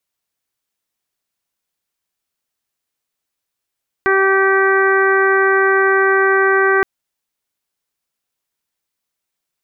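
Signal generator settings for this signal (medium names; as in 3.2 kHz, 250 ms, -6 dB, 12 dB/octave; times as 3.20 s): steady additive tone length 2.77 s, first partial 387 Hz, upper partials -8.5/-4.5/-2/-5.5/-18.5 dB, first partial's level -14 dB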